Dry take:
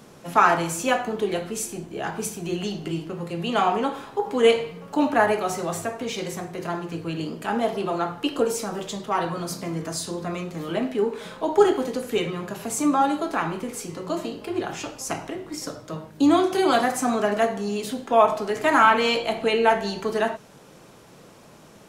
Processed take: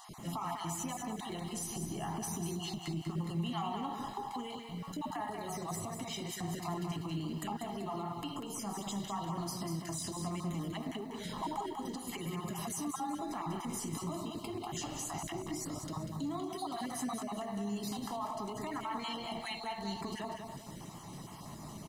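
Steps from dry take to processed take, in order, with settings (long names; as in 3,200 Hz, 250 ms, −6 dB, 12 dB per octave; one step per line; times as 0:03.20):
time-frequency cells dropped at random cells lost 25%
downward compressor 6 to 1, threshold −33 dBFS, peak gain reduction 19.5 dB
parametric band 1,900 Hz −6 dB 1.5 octaves
brickwall limiter −33.5 dBFS, peak gain reduction 11 dB
comb filter 1 ms, depth 76%
feedback echo at a low word length 193 ms, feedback 35%, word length 11 bits, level −6 dB
level +1 dB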